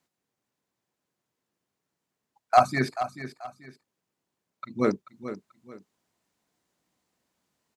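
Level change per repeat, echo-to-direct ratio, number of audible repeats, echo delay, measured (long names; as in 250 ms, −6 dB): −10.0 dB, −11.5 dB, 2, 436 ms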